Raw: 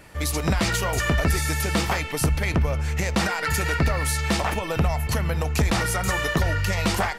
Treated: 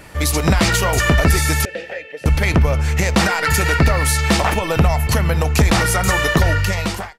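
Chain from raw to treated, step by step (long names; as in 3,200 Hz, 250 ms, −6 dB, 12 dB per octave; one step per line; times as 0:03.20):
fade-out on the ending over 0.66 s
0:01.65–0:02.26: formant filter e
level +7.5 dB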